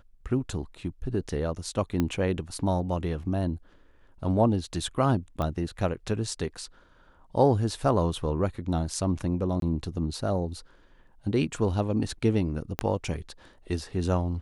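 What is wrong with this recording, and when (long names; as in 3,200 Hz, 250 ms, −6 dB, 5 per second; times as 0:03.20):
0:02.00: click −13 dBFS
0:05.42: click −19 dBFS
0:09.60–0:09.62: drop-out 22 ms
0:12.79: click −11 dBFS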